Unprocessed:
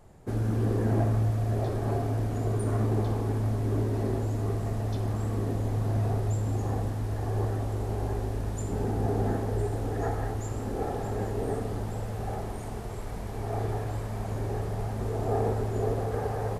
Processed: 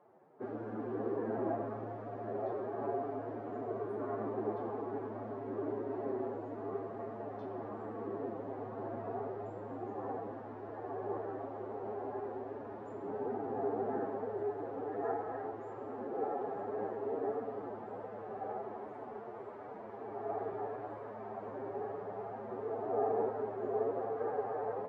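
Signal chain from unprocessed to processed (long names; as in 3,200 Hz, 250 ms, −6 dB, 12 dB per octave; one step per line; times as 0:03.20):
flat-topped band-pass 680 Hz, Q 0.59
phase-vocoder stretch with locked phases 1.5×
level −3 dB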